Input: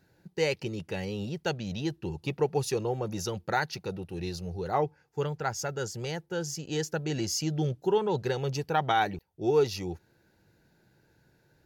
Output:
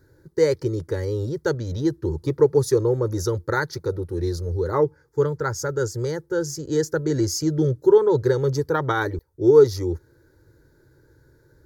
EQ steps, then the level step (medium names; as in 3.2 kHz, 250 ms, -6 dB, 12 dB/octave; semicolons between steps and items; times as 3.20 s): bass shelf 460 Hz +10 dB; static phaser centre 730 Hz, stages 6; +6.0 dB